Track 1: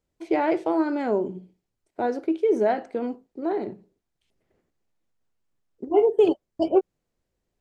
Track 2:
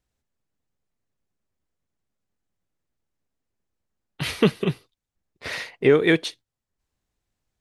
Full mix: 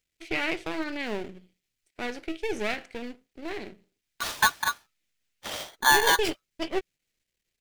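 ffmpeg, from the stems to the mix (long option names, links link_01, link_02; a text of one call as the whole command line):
ffmpeg -i stem1.wav -i stem2.wav -filter_complex "[0:a]aeval=exprs='if(lt(val(0),0),0.251*val(0),val(0))':channel_layout=same,highshelf=frequency=1500:width_type=q:width=1.5:gain=13.5,volume=-6dB[link_01];[1:a]agate=range=-33dB:threshold=-41dB:ratio=3:detection=peak,aeval=exprs='val(0)*sgn(sin(2*PI*1300*n/s))':channel_layout=same,volume=-4dB[link_02];[link_01][link_02]amix=inputs=2:normalize=0" out.wav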